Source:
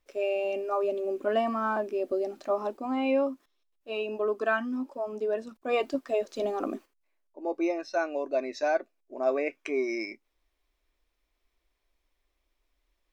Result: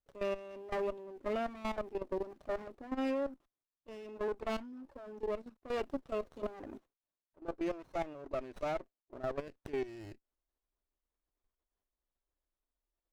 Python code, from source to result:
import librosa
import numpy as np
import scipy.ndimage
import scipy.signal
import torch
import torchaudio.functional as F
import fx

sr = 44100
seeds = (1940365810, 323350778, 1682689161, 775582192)

y = fx.level_steps(x, sr, step_db=14)
y = fx.running_max(y, sr, window=17)
y = y * 10.0 ** (-5.0 / 20.0)